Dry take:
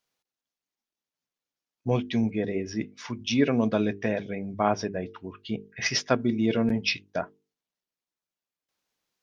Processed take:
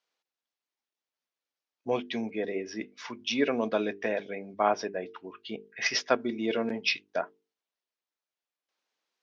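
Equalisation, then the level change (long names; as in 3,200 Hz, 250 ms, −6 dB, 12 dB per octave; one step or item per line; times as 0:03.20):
band-pass filter 360–5,500 Hz
0.0 dB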